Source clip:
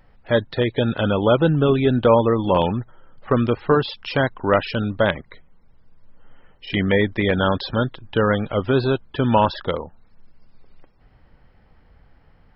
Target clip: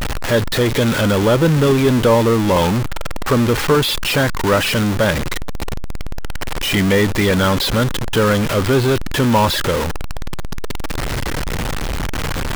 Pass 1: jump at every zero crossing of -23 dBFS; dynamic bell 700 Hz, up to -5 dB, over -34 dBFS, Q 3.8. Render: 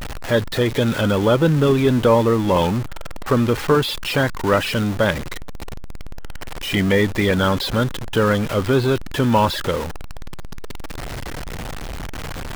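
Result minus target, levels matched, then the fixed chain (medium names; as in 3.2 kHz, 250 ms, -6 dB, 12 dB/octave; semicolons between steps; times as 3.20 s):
jump at every zero crossing: distortion -6 dB
jump at every zero crossing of -14.5 dBFS; dynamic bell 700 Hz, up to -5 dB, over -34 dBFS, Q 3.8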